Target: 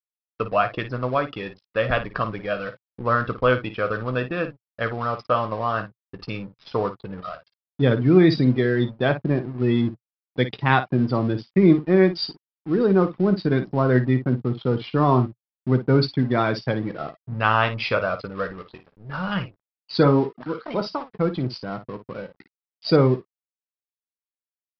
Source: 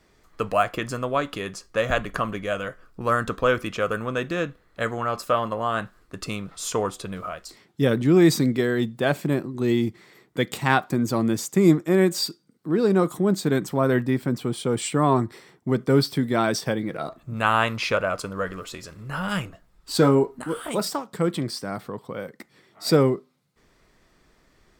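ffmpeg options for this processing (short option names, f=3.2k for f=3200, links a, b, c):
-af "afftfilt=real='re*gte(hypot(re,im),0.0316)':imag='im*gte(hypot(re,im),0.0316)':win_size=1024:overlap=0.75,aresample=11025,aeval=exprs='sgn(val(0))*max(abs(val(0))-0.00794,0)':c=same,aresample=44100,adynamicequalizer=threshold=0.00891:dfrequency=120:dqfactor=2.7:tfrequency=120:tqfactor=2.7:attack=5:release=100:ratio=0.375:range=2:mode=boostabove:tftype=bell,aecho=1:1:16|55:0.237|0.266,volume=1dB"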